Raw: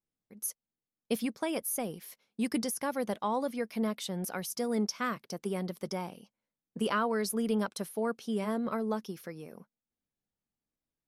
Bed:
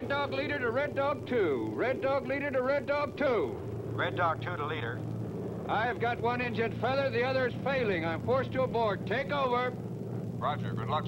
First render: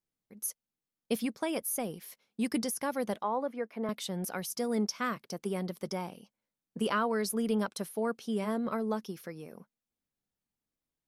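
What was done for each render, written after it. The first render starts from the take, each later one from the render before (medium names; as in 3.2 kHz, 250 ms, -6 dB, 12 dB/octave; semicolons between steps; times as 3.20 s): 3.23–3.89 s: three-band isolator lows -17 dB, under 240 Hz, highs -17 dB, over 2.2 kHz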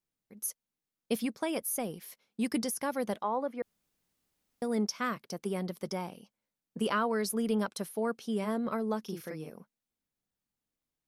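3.62–4.62 s: room tone; 9.02–9.50 s: doubling 38 ms -2 dB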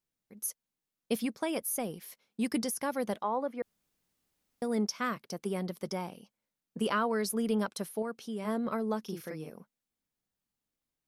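8.02–8.45 s: compression 1.5:1, threshold -42 dBFS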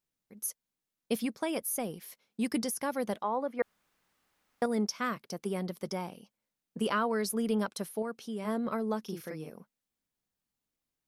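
3.59–4.66 s: peaking EQ 1.3 kHz +12.5 dB 2.6 oct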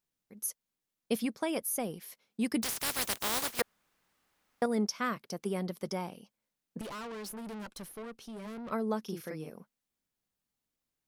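2.62–3.60 s: spectral contrast reduction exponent 0.18; 6.81–8.71 s: valve stage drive 40 dB, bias 0.55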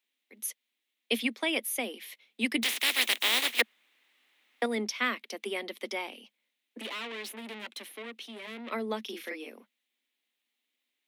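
steep high-pass 220 Hz 96 dB/octave; high-order bell 2.7 kHz +13 dB 1.3 oct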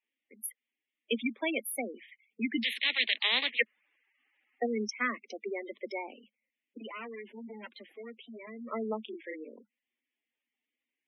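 local Wiener filter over 9 samples; spectral gate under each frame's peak -10 dB strong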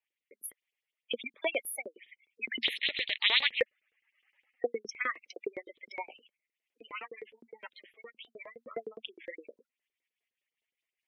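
LFO high-pass saw up 9.7 Hz 380–5300 Hz; rotary cabinet horn 1.1 Hz, later 5 Hz, at 6.27 s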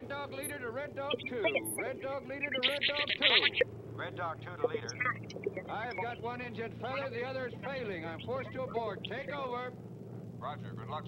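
add bed -9 dB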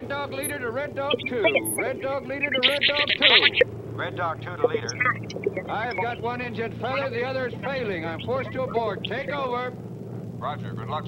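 trim +10.5 dB; peak limiter -2 dBFS, peak gain reduction 2 dB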